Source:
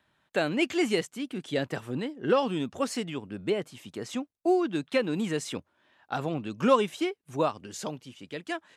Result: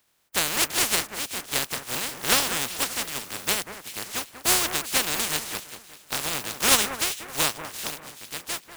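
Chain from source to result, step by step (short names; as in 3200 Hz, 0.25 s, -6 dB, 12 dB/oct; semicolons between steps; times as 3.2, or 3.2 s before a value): spectral contrast lowered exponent 0.15; echo with dull and thin repeats by turns 0.192 s, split 2100 Hz, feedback 54%, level -9.5 dB; gain +2.5 dB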